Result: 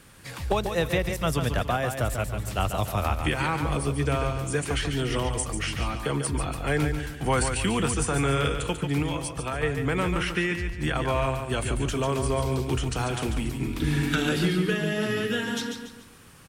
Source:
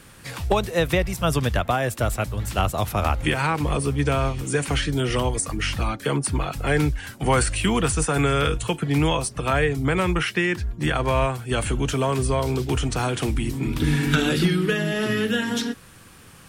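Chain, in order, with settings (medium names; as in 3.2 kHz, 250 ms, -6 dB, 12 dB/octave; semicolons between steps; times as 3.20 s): 9.02–9.63 s: compression, threshold -23 dBFS, peak gain reduction 7 dB; feedback delay 143 ms, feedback 37%, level -7 dB; trim -4.5 dB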